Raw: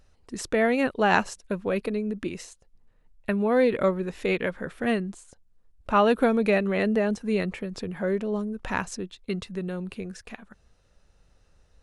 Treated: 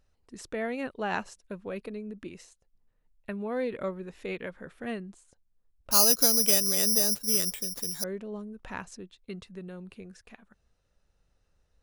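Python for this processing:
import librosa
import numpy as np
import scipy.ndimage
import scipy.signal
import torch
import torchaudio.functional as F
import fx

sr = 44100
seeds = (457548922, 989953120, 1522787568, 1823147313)

y = fx.resample_bad(x, sr, factor=8, down='none', up='zero_stuff', at=(5.91, 8.04))
y = y * librosa.db_to_amplitude(-10.0)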